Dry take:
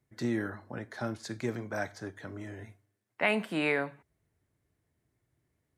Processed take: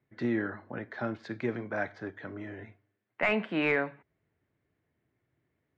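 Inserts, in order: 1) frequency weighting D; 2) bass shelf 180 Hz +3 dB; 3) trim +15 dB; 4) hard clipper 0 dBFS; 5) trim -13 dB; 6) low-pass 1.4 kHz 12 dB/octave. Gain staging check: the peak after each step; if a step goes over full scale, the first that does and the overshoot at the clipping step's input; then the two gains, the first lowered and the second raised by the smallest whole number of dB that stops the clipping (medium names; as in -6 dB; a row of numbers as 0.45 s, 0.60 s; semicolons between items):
-6.5 dBFS, -6.5 dBFS, +8.5 dBFS, 0.0 dBFS, -13.0 dBFS, -14.5 dBFS; step 3, 8.5 dB; step 3 +6 dB, step 5 -4 dB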